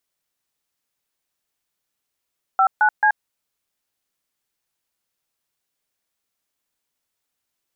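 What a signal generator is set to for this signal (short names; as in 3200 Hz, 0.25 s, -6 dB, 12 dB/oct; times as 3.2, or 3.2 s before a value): DTMF "59C", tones 80 ms, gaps 0.139 s, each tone -15 dBFS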